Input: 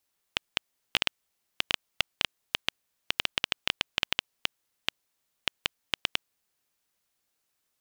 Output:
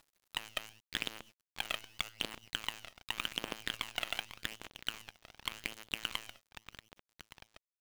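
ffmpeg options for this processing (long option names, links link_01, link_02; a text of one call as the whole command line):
ffmpeg -i in.wav -filter_complex "[0:a]bandreject=frequency=109.6:width_type=h:width=4,bandreject=frequency=219.2:width_type=h:width=4,bandreject=frequency=328.8:width_type=h:width=4,bandreject=frequency=438.4:width_type=h:width=4,bandreject=frequency=548:width_type=h:width=4,bandreject=frequency=657.6:width_type=h:width=4,bandreject=frequency=767.2:width_type=h:width=4,bandreject=frequency=876.8:width_type=h:width=4,bandreject=frequency=986.4:width_type=h:width=4,bandreject=frequency=1096:width_type=h:width=4,bandreject=frequency=1205.6:width_type=h:width=4,bandreject=frequency=1315.2:width_type=h:width=4,bandreject=frequency=1424.8:width_type=h:width=4,bandreject=frequency=1534.4:width_type=h:width=4,bandreject=frequency=1644:width_type=h:width=4,bandreject=frequency=1753.6:width_type=h:width=4,bandreject=frequency=1863.2:width_type=h:width=4,bandreject=frequency=1972.8:width_type=h:width=4,bandreject=frequency=2082.4:width_type=h:width=4,bandreject=frequency=2192:width_type=h:width=4,bandreject=frequency=2301.6:width_type=h:width=4,bandreject=frequency=2411.2:width_type=h:width=4,bandreject=frequency=2520.8:width_type=h:width=4,bandreject=frequency=2630.4:width_type=h:width=4,bandreject=frequency=2740:width_type=h:width=4,bandreject=frequency=2849.6:width_type=h:width=4,bandreject=frequency=2959.2:width_type=h:width=4,bandreject=frequency=3068.8:width_type=h:width=4,bandreject=frequency=3178.4:width_type=h:width=4,agate=range=-27dB:threshold=-57dB:ratio=16:detection=peak,lowshelf=frequency=160:width_type=q:width=1.5:gain=-7,acompressor=threshold=-36dB:ratio=6,lowpass=frequency=2200:poles=1,asplit=2[link_01][link_02];[link_02]aecho=0:1:635|1270|1905|2540:0.119|0.057|0.0274|0.0131[link_03];[link_01][link_03]amix=inputs=2:normalize=0,aphaser=in_gain=1:out_gain=1:delay=1.6:decay=0.56:speed=0.86:type=triangular,asoftclip=type=tanh:threshold=-28.5dB,asplit=2[link_04][link_05];[link_05]asetrate=58866,aresample=44100,atempo=0.749154,volume=-17dB[link_06];[link_04][link_06]amix=inputs=2:normalize=0,acompressor=mode=upward:threshold=-54dB:ratio=2.5,acrusher=bits=9:dc=4:mix=0:aa=0.000001,volume=10dB" out.wav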